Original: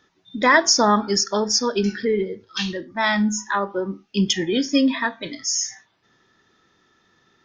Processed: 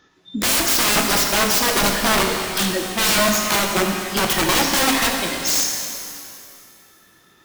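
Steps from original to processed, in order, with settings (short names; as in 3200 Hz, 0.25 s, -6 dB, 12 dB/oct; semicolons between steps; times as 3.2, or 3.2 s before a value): wrapped overs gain 18 dB; shimmer reverb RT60 2.2 s, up +12 st, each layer -8 dB, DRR 2 dB; gain +4 dB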